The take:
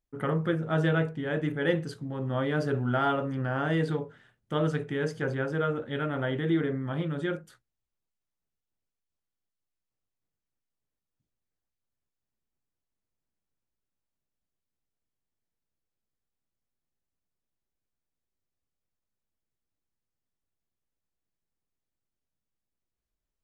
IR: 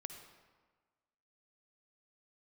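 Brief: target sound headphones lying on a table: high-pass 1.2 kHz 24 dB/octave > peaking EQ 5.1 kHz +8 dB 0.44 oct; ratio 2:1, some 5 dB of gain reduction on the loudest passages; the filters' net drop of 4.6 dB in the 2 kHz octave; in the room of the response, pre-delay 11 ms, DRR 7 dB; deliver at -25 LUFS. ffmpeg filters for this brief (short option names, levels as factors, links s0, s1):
-filter_complex "[0:a]equalizer=f=2000:t=o:g=-6,acompressor=threshold=0.0316:ratio=2,asplit=2[s0][s1];[1:a]atrim=start_sample=2205,adelay=11[s2];[s1][s2]afir=irnorm=-1:irlink=0,volume=0.668[s3];[s0][s3]amix=inputs=2:normalize=0,highpass=f=1200:w=0.5412,highpass=f=1200:w=1.3066,equalizer=f=5100:t=o:w=0.44:g=8,volume=8.41"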